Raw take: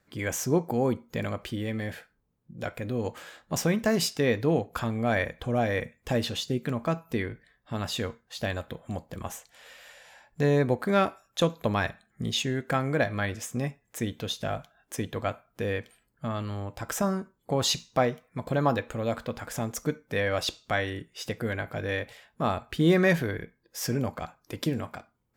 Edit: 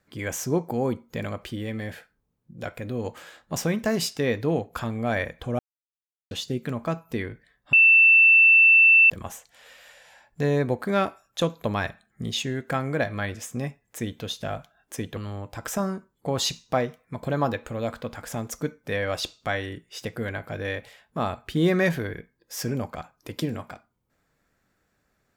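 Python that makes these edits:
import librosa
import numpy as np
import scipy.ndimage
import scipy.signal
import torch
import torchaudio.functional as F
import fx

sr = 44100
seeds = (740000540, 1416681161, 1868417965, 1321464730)

y = fx.edit(x, sr, fx.silence(start_s=5.59, length_s=0.72),
    fx.bleep(start_s=7.73, length_s=1.37, hz=2670.0, db=-11.5),
    fx.cut(start_s=15.17, length_s=1.24), tone=tone)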